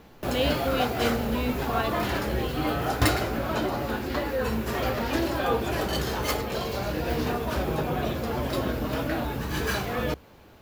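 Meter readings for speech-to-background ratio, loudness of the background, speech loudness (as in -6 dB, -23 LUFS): -3.0 dB, -28.0 LUFS, -31.0 LUFS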